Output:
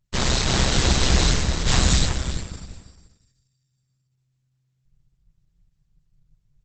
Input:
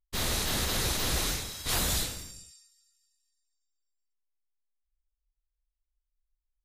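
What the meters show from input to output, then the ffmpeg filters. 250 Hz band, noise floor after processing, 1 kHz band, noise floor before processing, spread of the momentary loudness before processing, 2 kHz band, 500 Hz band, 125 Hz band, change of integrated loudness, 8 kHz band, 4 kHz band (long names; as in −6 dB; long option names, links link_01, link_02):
+12.5 dB, −72 dBFS, +9.0 dB, −85 dBFS, 12 LU, +8.5 dB, +9.5 dB, +14.5 dB, +8.0 dB, +6.0 dB, +8.0 dB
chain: -filter_complex "[0:a]asubboost=boost=2:cutoff=250,tremolo=f=130:d=0.667,acontrast=49,asplit=2[link_01][link_02];[link_02]adelay=345,lowpass=frequency=2400:poles=1,volume=-5dB,asplit=2[link_03][link_04];[link_04]adelay=345,lowpass=frequency=2400:poles=1,volume=0.19,asplit=2[link_05][link_06];[link_06]adelay=345,lowpass=frequency=2400:poles=1,volume=0.19[link_07];[link_01][link_03][link_05][link_07]amix=inputs=4:normalize=0,volume=7.5dB" -ar 48000 -c:a libopus -b:a 12k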